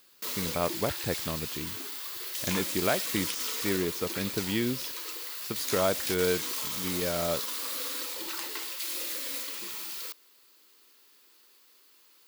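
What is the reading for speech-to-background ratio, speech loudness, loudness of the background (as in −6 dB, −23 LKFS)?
0.0 dB, −32.5 LKFS, −32.5 LKFS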